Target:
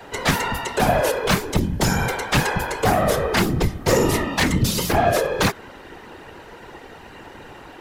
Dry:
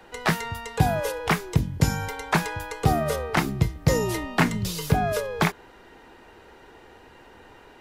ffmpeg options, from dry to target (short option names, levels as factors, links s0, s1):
-af "aeval=exprs='0.447*sin(PI/2*3.55*val(0)/0.447)':c=same,afftfilt=real='hypot(re,im)*cos(2*PI*random(0))':imag='hypot(re,im)*sin(2*PI*random(1))':win_size=512:overlap=0.75"